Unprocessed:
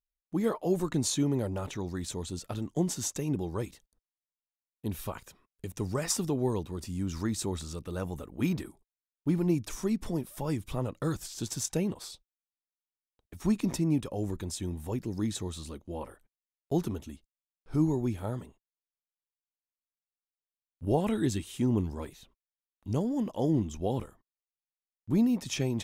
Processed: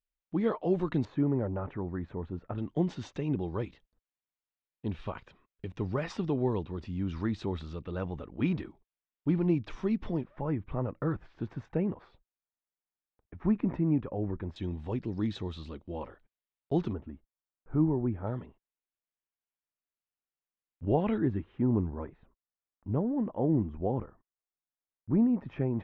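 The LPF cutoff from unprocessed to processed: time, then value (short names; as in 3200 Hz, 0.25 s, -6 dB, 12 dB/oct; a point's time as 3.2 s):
LPF 24 dB/oct
3500 Hz
from 1.05 s 1800 Hz
from 2.58 s 3400 Hz
from 10.24 s 2000 Hz
from 14.56 s 3800 Hz
from 16.93 s 1700 Hz
from 18.27 s 2800 Hz
from 21.18 s 1700 Hz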